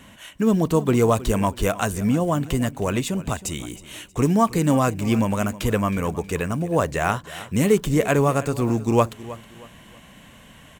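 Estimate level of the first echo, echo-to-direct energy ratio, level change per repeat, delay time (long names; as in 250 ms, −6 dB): −17.0 dB, −16.5 dB, −9.5 dB, 317 ms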